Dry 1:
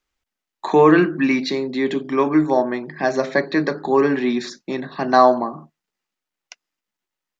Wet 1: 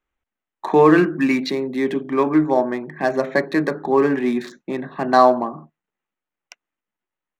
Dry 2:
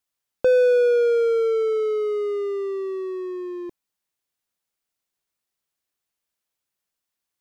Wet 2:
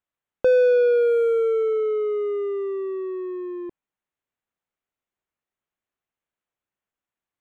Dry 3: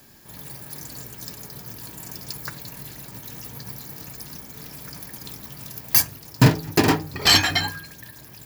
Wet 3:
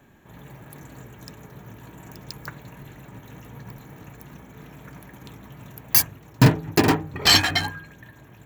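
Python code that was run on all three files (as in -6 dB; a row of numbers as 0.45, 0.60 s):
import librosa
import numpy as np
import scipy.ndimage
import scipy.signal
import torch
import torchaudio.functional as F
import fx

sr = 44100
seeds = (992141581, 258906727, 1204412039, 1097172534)

y = fx.wiener(x, sr, points=9)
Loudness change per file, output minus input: 0.0, 0.0, +0.5 LU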